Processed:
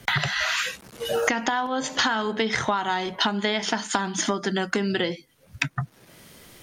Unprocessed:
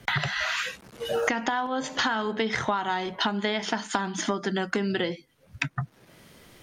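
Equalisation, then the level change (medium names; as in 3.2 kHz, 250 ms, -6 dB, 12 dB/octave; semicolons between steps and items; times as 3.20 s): treble shelf 4.9 kHz +7 dB; +2.0 dB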